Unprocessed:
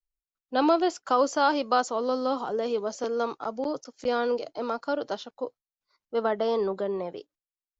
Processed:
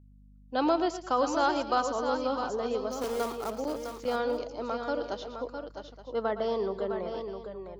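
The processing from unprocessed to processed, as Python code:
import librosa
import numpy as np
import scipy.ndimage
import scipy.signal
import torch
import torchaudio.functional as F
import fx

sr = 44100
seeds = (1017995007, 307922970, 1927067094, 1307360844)

y = fx.quant_companded(x, sr, bits=4, at=(2.91, 3.55))
y = fx.add_hum(y, sr, base_hz=50, snr_db=23)
y = fx.echo_multitap(y, sr, ms=(115, 216, 658, 873), db=(-12.5, -19.0, -7.5, -16.0))
y = F.gain(torch.from_numpy(y), -4.0).numpy()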